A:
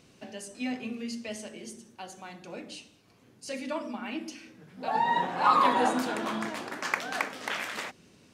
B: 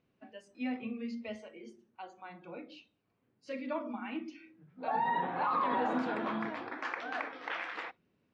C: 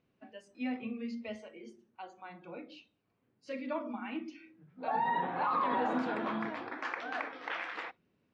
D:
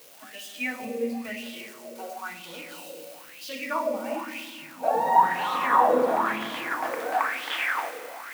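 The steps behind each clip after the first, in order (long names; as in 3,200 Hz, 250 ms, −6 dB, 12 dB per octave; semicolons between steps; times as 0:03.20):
noise reduction from a noise print of the clip's start 14 dB; low-pass filter 2,400 Hz 12 dB per octave; brickwall limiter −20.5 dBFS, peak gain reduction 11 dB; level −2.5 dB
no processing that can be heard
spike at every zero crossing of −37 dBFS; four-comb reverb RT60 2.8 s, combs from 30 ms, DRR 2.5 dB; auto-filter bell 1 Hz 470–3,400 Hz +18 dB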